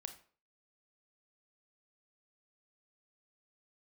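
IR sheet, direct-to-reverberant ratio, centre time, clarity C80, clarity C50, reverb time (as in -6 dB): 7.0 dB, 9 ms, 16.0 dB, 11.5 dB, 0.45 s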